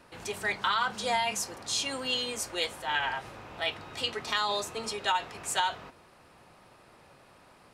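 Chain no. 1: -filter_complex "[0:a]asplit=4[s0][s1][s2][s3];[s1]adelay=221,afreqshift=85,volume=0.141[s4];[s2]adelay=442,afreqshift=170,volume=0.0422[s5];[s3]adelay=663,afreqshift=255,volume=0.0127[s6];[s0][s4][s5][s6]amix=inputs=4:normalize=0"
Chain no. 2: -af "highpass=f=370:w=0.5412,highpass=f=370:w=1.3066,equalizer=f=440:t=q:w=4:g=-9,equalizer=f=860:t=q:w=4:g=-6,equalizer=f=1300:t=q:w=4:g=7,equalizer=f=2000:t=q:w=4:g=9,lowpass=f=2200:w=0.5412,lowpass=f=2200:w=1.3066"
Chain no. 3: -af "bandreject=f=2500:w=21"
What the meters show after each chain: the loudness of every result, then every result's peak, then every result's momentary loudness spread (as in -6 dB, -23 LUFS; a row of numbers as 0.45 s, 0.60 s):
-30.5 LUFS, -30.5 LUFS, -31.0 LUFS; -12.5 dBFS, -13.0 dBFS, -13.0 dBFS; 6 LU, 15 LU, 6 LU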